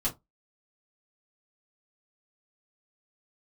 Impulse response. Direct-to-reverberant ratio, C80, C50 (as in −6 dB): −7.5 dB, 26.5 dB, 16.5 dB